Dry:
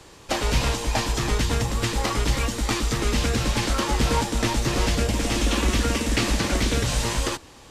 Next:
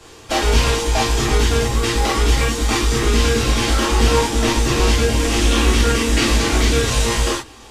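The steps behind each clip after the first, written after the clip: non-linear reverb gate 80 ms flat, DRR -5 dB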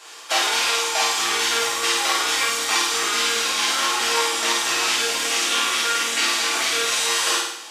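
HPF 930 Hz 12 dB/oct; on a send: flutter echo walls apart 8.9 m, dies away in 0.73 s; on the sum: vocal rider within 4 dB 0.5 s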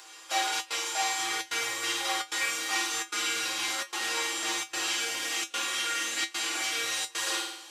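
step gate "xxxxxx.xxxxxxx.x" 149 bpm -24 dB; upward compressor, threshold -36 dBFS; resonator 110 Hz, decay 0.16 s, harmonics odd, mix 90%

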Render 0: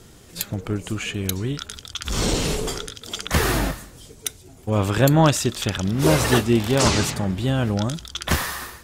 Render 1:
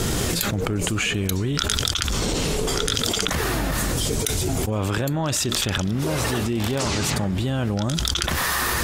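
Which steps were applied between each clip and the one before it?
fast leveller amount 100%; gain -10.5 dB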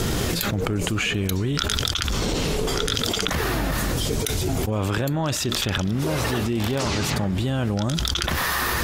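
dynamic EQ 8400 Hz, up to -6 dB, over -41 dBFS, Q 1.3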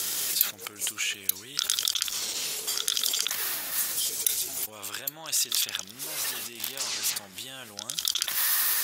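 differentiator; gain +3 dB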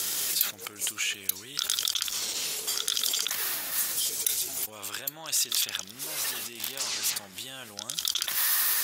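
soft clip -10.5 dBFS, distortion -18 dB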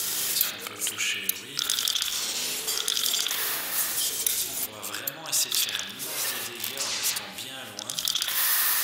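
spring tank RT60 1.1 s, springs 36/56 ms, chirp 25 ms, DRR 1.5 dB; gain +1.5 dB

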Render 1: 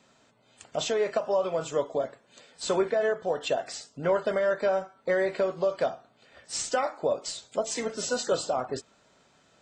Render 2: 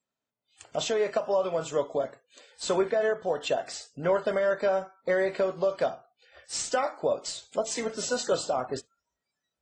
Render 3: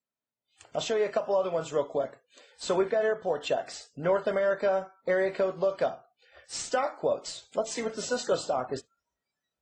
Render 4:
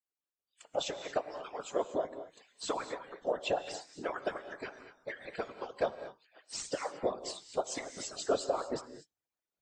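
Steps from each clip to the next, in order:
spectral noise reduction 27 dB
high shelf 5500 Hz -5.5 dB; AGC gain up to 7 dB; gain -7.5 dB
median-filter separation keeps percussive; whisperiser; non-linear reverb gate 0.26 s rising, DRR 10 dB; gain -3 dB

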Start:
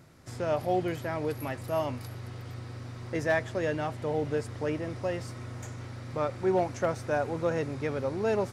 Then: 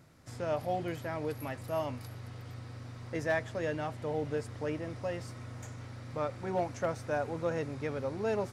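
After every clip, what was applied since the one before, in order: notch 370 Hz, Q 12; gain -4 dB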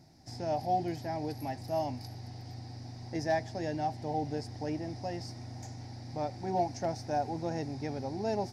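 EQ curve 100 Hz 0 dB, 350 Hz +3 dB, 510 Hz -8 dB, 780 Hz +9 dB, 1200 Hz -16 dB, 1800 Hz -4 dB, 3200 Hz -7 dB, 5100 Hz +11 dB, 7300 Hz -4 dB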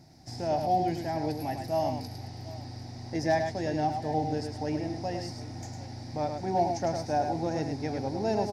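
tapped delay 0.105/0.749 s -6/-18 dB; gain +3.5 dB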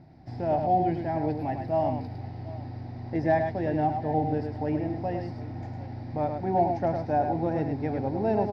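air absorption 440 m; gain +4 dB

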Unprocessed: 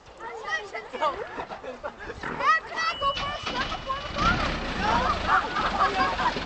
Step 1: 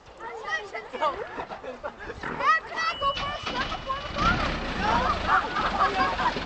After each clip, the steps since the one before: high shelf 6200 Hz -4 dB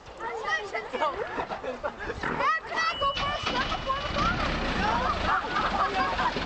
compressor 4:1, threshold -27 dBFS, peak gain reduction 9.5 dB; gain +3.5 dB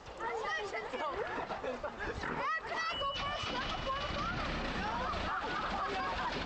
limiter -24.5 dBFS, peak gain reduction 10 dB; gain -3.5 dB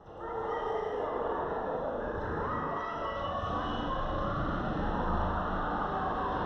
running mean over 19 samples; on a send: flutter echo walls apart 6.5 m, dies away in 0.3 s; on the sum: non-linear reverb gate 0.41 s flat, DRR -5 dB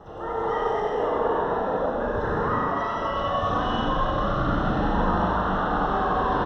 echo 93 ms -4 dB; gain +7.5 dB

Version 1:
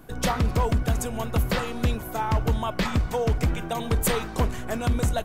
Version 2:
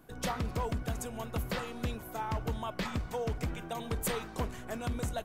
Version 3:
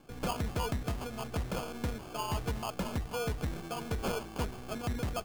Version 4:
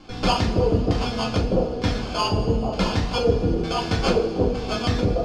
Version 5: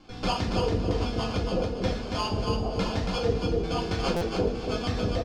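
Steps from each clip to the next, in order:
low shelf 87 Hz -5.5 dB; gain -9 dB
sample-and-hold 23×
LFO low-pass square 1.1 Hz 480–4800 Hz; two-slope reverb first 0.3 s, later 3 s, from -18 dB, DRR -3 dB; gain +8.5 dB
feedback echo 0.28 s, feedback 26%, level -4 dB; stuck buffer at 4.16, samples 256, times 8; gain -7 dB

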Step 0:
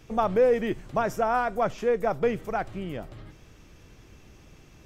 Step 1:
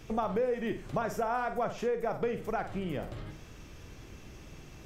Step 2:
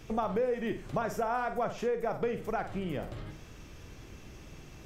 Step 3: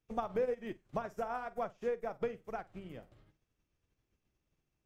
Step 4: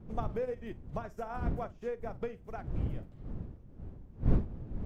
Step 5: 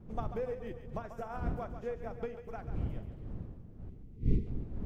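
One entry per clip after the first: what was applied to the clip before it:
on a send: flutter echo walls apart 8.2 m, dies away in 0.3 s; on the sum: compressor 3:1, threshold -34 dBFS, peak gain reduction 13.5 dB; gain +2.5 dB
nothing audible
upward expander 2.5:1, over -49 dBFS; gain -2 dB
wind noise 210 Hz -40 dBFS; low shelf 100 Hz +11 dB; gain -2.5 dB
spectral gain 3.89–4.46, 480–1900 Hz -22 dB; split-band echo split 440 Hz, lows 0.242 s, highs 0.14 s, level -10 dB; gain -2 dB

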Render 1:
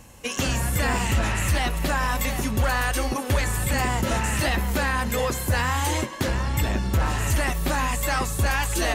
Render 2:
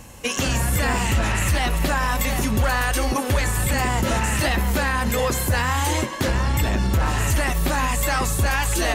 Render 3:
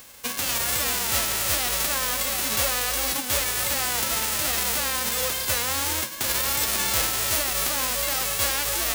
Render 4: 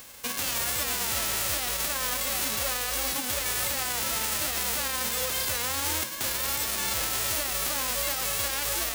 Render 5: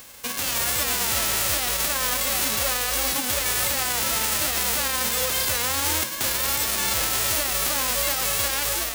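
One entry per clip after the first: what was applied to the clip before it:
limiter -18 dBFS, peak gain reduction 4.5 dB; gain +5.5 dB
spectral whitening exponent 0.1; gain -4.5 dB
limiter -18.5 dBFS, peak gain reduction 9 dB
AGC gain up to 3 dB; gain +2 dB

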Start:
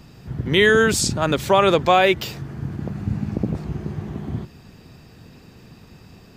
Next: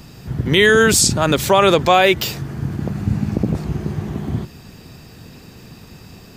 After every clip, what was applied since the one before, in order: high shelf 5400 Hz +7.5 dB; in parallel at +2 dB: limiter -10.5 dBFS, peak gain reduction 7.5 dB; on the sum: gain -2 dB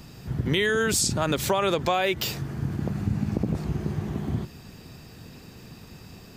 compressor, threshold -15 dBFS, peak gain reduction 7 dB; gain -5 dB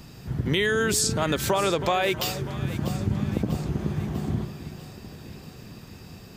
echo with dull and thin repeats by turns 0.322 s, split 1200 Hz, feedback 75%, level -11.5 dB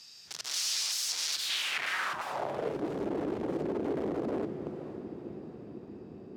wrapped overs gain 25.5 dB; diffused feedback echo 0.517 s, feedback 48%, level -11 dB; band-pass sweep 5300 Hz -> 350 Hz, 1.29–2.84; gain +6 dB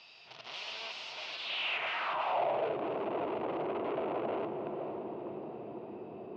soft clip -37.5 dBFS, distortion -7 dB; speaker cabinet 170–3300 Hz, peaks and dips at 180 Hz -8 dB, 270 Hz -8 dB, 670 Hz +9 dB, 950 Hz +5 dB, 1700 Hz -7 dB, 2700 Hz +6 dB; gain +5 dB

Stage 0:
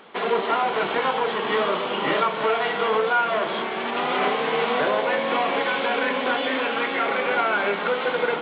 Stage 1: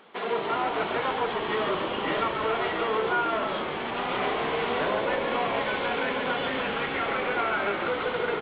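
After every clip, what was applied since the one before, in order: frequency-shifting echo 0.141 s, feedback 60%, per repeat -58 Hz, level -6 dB; gain -6 dB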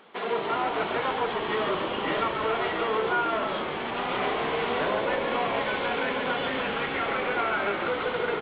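nothing audible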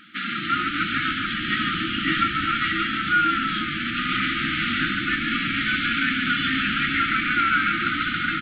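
brick-wall FIR band-stop 340–1200 Hz; gain +8.5 dB

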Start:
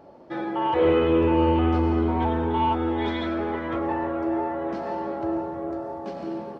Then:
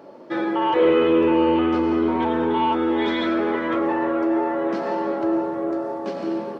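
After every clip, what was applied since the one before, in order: in parallel at +2.5 dB: limiter -20 dBFS, peak gain reduction 10 dB; on the sum: HPF 220 Hz 12 dB/oct; bell 760 Hz -8.5 dB 0.32 oct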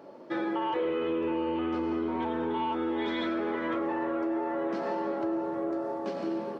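compressor, threshold -22 dBFS, peak gain reduction 9 dB; gain -5 dB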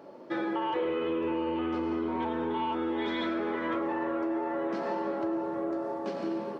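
reverb RT60 0.75 s, pre-delay 35 ms, DRR 13.5 dB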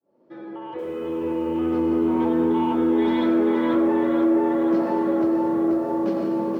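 opening faded in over 2.07 s; tilt shelf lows +5.5 dB, about 720 Hz; lo-fi delay 0.483 s, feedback 55%, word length 10-bit, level -6.5 dB; gain +5 dB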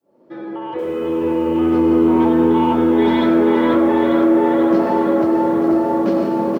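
echo 0.892 s -9.5 dB; gain +7.5 dB

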